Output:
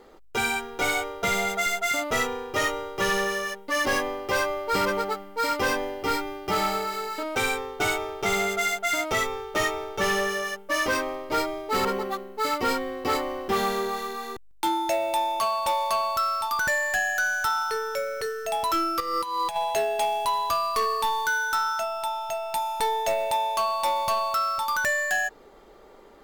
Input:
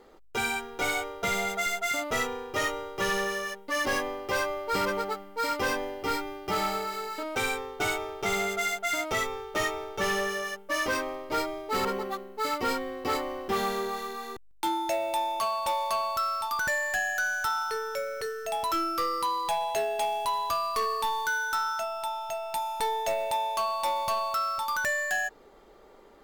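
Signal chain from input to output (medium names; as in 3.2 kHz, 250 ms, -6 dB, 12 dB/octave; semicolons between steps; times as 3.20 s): 19.00–19.56 s: compressor with a negative ratio -31 dBFS, ratio -0.5; trim +3.5 dB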